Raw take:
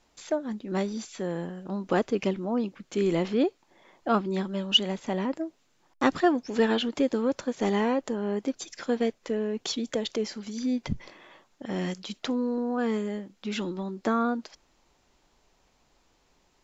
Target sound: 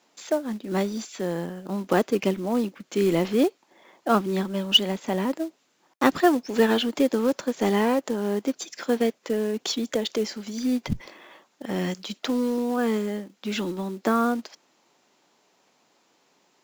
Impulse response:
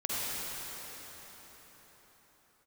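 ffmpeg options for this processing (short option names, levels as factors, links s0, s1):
-filter_complex "[0:a]acrossover=split=160[s0][s1];[s0]aeval=exprs='sgn(val(0))*max(abs(val(0))-0.00224,0)':c=same[s2];[s1]acrusher=bits=5:mode=log:mix=0:aa=0.000001[s3];[s2][s3]amix=inputs=2:normalize=0,volume=1.5"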